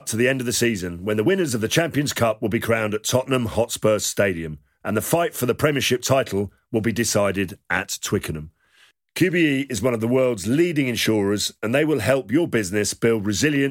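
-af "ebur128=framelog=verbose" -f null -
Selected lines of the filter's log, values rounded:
Integrated loudness:
  I:         -21.4 LUFS
  Threshold: -31.6 LUFS
Loudness range:
  LRA:         2.4 LU
  Threshold: -41.8 LUFS
  LRA low:   -23.0 LUFS
  LRA high:  -20.6 LUFS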